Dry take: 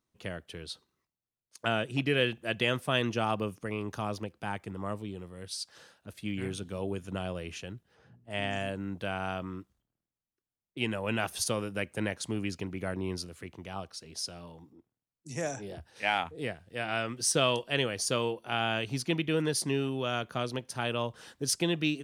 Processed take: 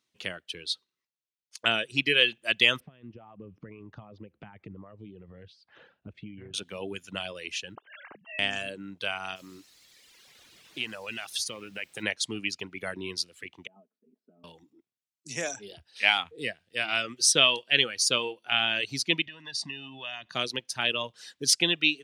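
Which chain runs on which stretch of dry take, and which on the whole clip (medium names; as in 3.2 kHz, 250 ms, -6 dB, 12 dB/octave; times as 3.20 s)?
2.80–6.54 s: compression 8:1, threshold -45 dBFS + low-pass 2.8 kHz + tilt EQ -4.5 dB/octave
7.75–8.39 s: formants replaced by sine waves + spectrum-flattening compressor 4:1
9.35–12.02 s: compression 5:1, threshold -35 dBFS + added noise pink -57 dBFS
13.67–14.44 s: ladder band-pass 290 Hz, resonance 55% + distance through air 310 m + comb 4.7 ms, depth 72%
19.26–20.35 s: low-pass 5.8 kHz + comb 1.1 ms, depth 71% + compression, threshold -36 dBFS
whole clip: frequency weighting D; reverb removal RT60 1.6 s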